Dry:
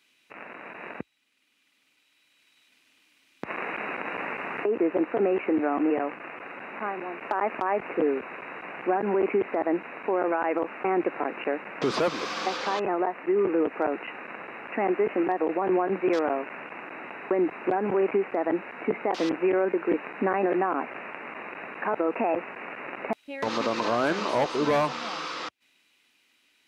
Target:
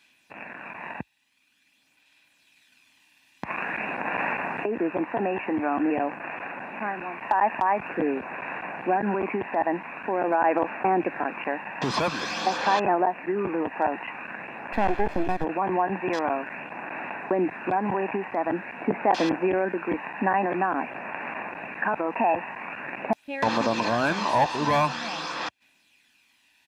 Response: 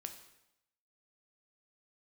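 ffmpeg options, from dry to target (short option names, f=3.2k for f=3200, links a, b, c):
-filter_complex "[0:a]asplit=3[a][b][c];[a]afade=t=out:st=14.72:d=0.02[d];[b]aeval=exprs='if(lt(val(0),0),0.251*val(0),val(0))':c=same,afade=t=in:st=14.72:d=0.02,afade=t=out:st=15.43:d=0.02[e];[c]afade=t=in:st=15.43:d=0.02[f];[d][e][f]amix=inputs=3:normalize=0,aecho=1:1:1.2:0.49,aphaser=in_gain=1:out_gain=1:delay=1.1:decay=0.33:speed=0.47:type=sinusoidal,volume=1.5dB"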